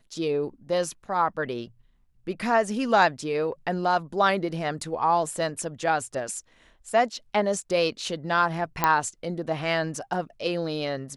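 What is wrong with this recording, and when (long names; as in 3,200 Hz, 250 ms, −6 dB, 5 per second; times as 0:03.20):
0:08.84: click −6 dBFS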